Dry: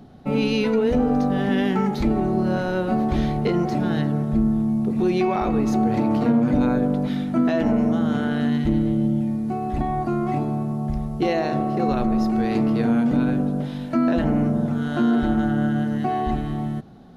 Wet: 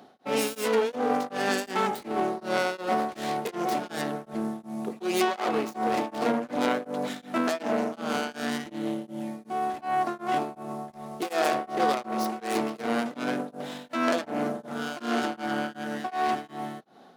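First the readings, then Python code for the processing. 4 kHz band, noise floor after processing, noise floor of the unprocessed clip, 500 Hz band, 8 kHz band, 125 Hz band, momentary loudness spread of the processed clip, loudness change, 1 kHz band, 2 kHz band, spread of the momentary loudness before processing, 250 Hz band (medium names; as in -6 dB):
+1.0 dB, -52 dBFS, -29 dBFS, -4.0 dB, no reading, -20.0 dB, 8 LU, -7.5 dB, -0.5 dB, +0.5 dB, 5 LU, -12.0 dB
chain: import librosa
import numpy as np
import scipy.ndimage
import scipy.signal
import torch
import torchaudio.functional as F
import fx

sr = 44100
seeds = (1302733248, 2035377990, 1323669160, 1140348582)

y = fx.tracing_dist(x, sr, depth_ms=0.38)
y = scipy.signal.sosfilt(scipy.signal.butter(2, 490.0, 'highpass', fs=sr, output='sos'), y)
y = y * np.abs(np.cos(np.pi * 2.7 * np.arange(len(y)) / sr))
y = y * 10.0 ** (3.0 / 20.0)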